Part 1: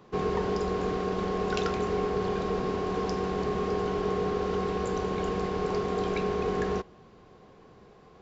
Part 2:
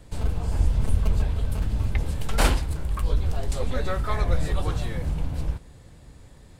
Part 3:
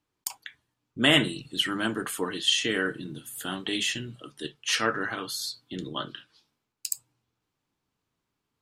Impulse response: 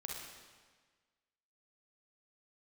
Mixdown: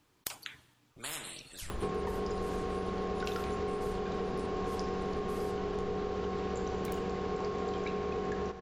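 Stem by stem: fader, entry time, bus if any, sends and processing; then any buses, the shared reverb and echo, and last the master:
+1.5 dB, 1.70 s, send −7.5 dB, upward compression, threshold −35 dBFS
−16.0 dB, 1.50 s, no send, spectral envelope exaggerated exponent 1.5
0:01.10 −7 dB → 0:01.86 −16 dB, 0.00 s, send −19 dB, every bin compressed towards the loudest bin 10 to 1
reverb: on, RT60 1.5 s, pre-delay 34 ms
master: downward compressor 12 to 1, threshold −31 dBFS, peak gain reduction 12 dB

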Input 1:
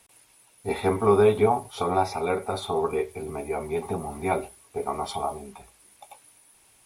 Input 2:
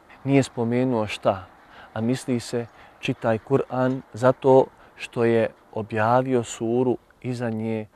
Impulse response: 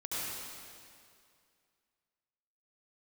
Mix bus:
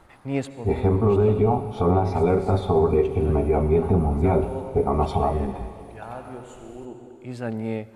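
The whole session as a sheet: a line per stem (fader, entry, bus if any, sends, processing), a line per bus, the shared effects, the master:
−0.5 dB, 0.00 s, send −15 dB, spectral tilt −4.5 dB per octave; speech leveller within 4 dB 0.5 s; brickwall limiter −11 dBFS, peak gain reduction 6.5 dB
−2.0 dB, 0.00 s, send −23 dB, automatic ducking −19 dB, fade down 1.10 s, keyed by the first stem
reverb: on, RT60 2.3 s, pre-delay 65 ms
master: no processing

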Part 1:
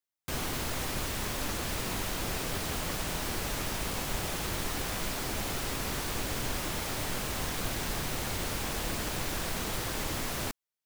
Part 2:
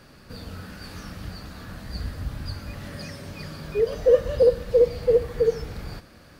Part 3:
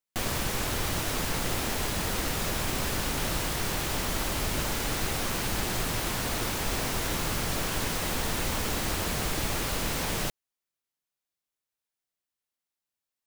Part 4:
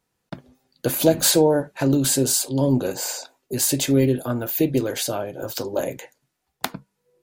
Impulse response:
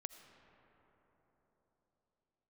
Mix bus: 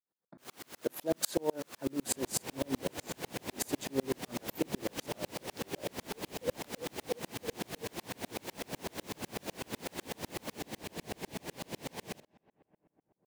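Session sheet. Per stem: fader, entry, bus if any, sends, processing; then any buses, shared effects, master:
−3.5 dB, 0.10 s, no send, hard clipping −32.5 dBFS, distortion −10 dB
−14.5 dB, 2.35 s, no send, no processing
−3.5 dB, 1.90 s, send −6.5 dB, spectral tilt −2 dB per octave; parametric band 1,300 Hz −11.5 dB 0.4 octaves
−6.5 dB, 0.00 s, no send, adaptive Wiener filter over 15 samples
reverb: on, RT60 4.3 s, pre-delay 40 ms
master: high-pass filter 220 Hz 12 dB per octave; tremolo with a ramp in dB swelling 8 Hz, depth 37 dB

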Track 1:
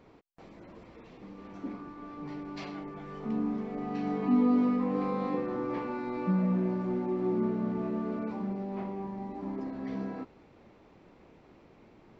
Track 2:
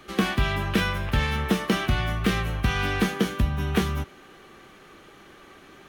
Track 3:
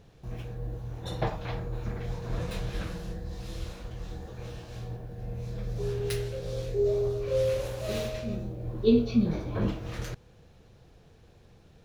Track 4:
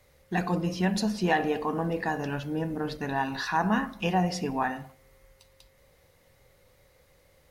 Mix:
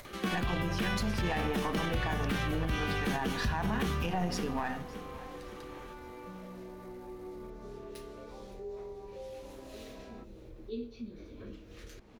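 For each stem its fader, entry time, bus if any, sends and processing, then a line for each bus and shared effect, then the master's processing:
−12.5 dB, 0.00 s, no send, no echo send, parametric band 210 Hz −13.5 dB 0.77 octaves
−5.5 dB, 0.05 s, no send, echo send −11 dB, no processing
−16.0 dB, 1.85 s, no send, echo send −22.5 dB, phaser with its sweep stopped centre 340 Hz, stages 4
−1.0 dB, 0.00 s, no send, echo send −21.5 dB, gain on one half-wave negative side −7 dB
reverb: not used
echo: repeating echo 566 ms, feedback 35%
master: upward compression, threshold −40 dBFS; brickwall limiter −22.5 dBFS, peak gain reduction 9 dB

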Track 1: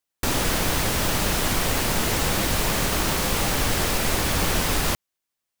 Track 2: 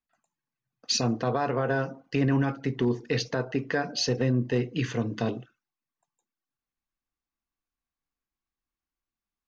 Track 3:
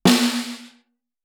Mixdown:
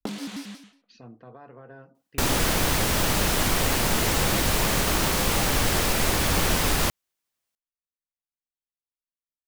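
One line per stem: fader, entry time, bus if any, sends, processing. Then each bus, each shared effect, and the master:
0.0 dB, 1.95 s, no send, no processing
−19.5 dB, 0.00 s, no send, low-pass filter 2,500 Hz 12 dB per octave
−10.0 dB, 0.00 s, no send, low-shelf EQ 320 Hz +4.5 dB; downward compressor 16 to 1, threshold −19 dBFS, peak gain reduction 13 dB; pitch modulation by a square or saw wave square 5.5 Hz, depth 250 cents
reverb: not used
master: no processing

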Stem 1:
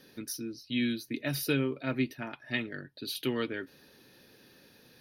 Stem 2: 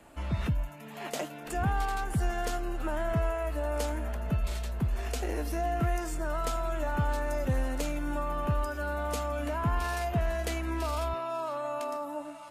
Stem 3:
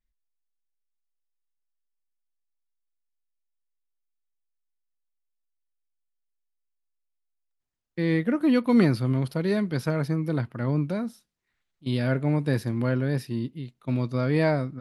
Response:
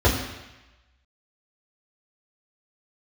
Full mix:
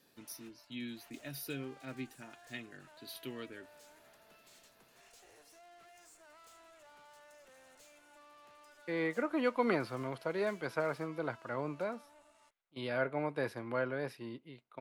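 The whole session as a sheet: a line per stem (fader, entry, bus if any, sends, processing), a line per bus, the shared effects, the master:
−13.0 dB, 0.00 s, no send, high-shelf EQ 8,600 Hz +7.5 dB
−15.5 dB, 0.00 s, no send, Chebyshev band-pass filter 470–7,700 Hz, order 2; spectral tilt +3 dB per octave; tube saturation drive 42 dB, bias 0.75
−1.5 dB, 0.90 s, no send, three-way crossover with the lows and the highs turned down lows −20 dB, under 440 Hz, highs −12 dB, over 2,600 Hz; notch filter 1,800 Hz, Q 12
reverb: not used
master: no processing

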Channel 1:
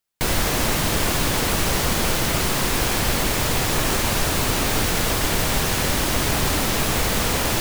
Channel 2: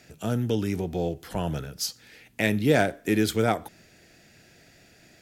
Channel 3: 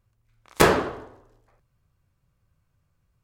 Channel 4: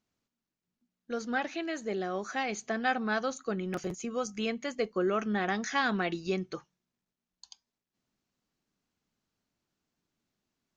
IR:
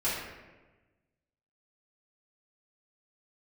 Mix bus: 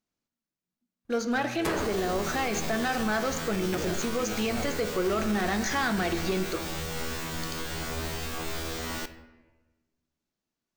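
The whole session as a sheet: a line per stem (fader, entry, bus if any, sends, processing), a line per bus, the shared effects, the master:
0.0 dB, 1.45 s, send −17 dB, parametric band 11,000 Hz −9.5 dB 0.45 octaves; brickwall limiter −13.5 dBFS, peak gain reduction 5 dB; tuned comb filter 81 Hz, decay 0.62 s, harmonics all, mix 100%
−15.5 dB, 1.10 s, no send, no processing
−5.0 dB, 1.05 s, no send, no processing
−1.5 dB, 0.00 s, send −15.5 dB, high-shelf EQ 3,800 Hz −5 dB; leveller curve on the samples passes 2; bass and treble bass −1 dB, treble +5 dB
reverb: on, RT60 1.2 s, pre-delay 3 ms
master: brickwall limiter −19.5 dBFS, peak gain reduction 10 dB

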